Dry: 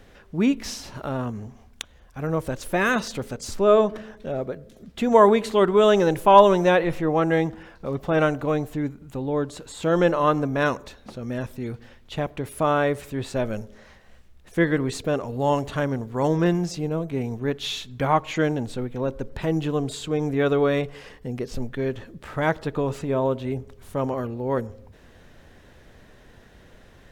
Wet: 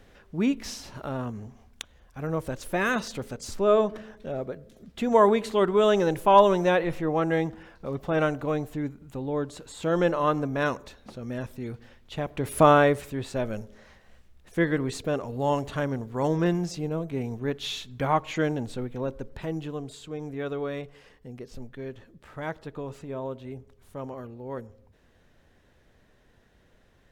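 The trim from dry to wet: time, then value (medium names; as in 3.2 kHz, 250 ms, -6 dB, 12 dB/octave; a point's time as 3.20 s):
12.25 s -4 dB
12.59 s +6 dB
13.21 s -3.5 dB
18.93 s -3.5 dB
19.91 s -11 dB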